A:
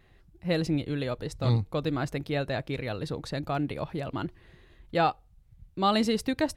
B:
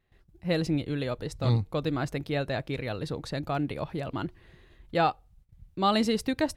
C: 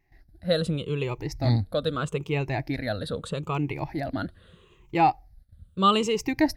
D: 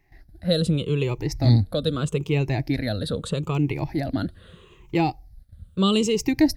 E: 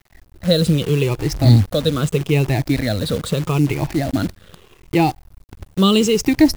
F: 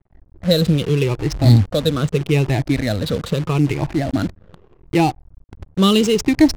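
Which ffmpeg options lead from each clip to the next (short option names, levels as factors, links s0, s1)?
-af "agate=range=0.2:threshold=0.00141:ratio=16:detection=peak"
-af "afftfilt=real='re*pow(10,16/40*sin(2*PI*(0.73*log(max(b,1)*sr/1024/100)/log(2)-(-0.79)*(pts-256)/sr)))':imag='im*pow(10,16/40*sin(2*PI*(0.73*log(max(b,1)*sr/1024/100)/log(2)-(-0.79)*(pts-256)/sr)))':win_size=1024:overlap=0.75"
-filter_complex "[0:a]acrossover=split=470|3000[s0][s1][s2];[s1]acompressor=threshold=0.00708:ratio=3[s3];[s0][s3][s2]amix=inputs=3:normalize=0,volume=2"
-af "acrusher=bits=7:dc=4:mix=0:aa=0.000001,volume=2"
-af "adynamicsmooth=sensitivity=6:basefreq=510"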